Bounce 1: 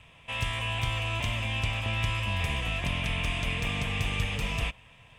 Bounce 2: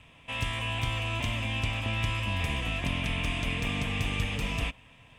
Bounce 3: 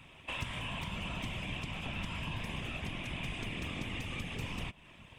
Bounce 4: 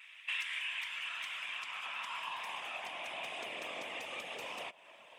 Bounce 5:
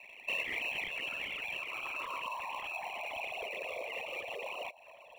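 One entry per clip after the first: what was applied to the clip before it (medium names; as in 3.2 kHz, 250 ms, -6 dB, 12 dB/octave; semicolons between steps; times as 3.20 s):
peaking EQ 270 Hz +8 dB 0.58 oct; trim -1 dB
compression 4:1, threshold -37 dBFS, peak gain reduction 11 dB; whisper effect
vibrato 0.98 Hz 23 cents; high-pass sweep 1.9 kHz -> 600 Hz, 0.71–3.46 s; trim -1 dB
resonances exaggerated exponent 3; in parallel at -10.5 dB: sample-and-hold 27×; on the sum: trim +2 dB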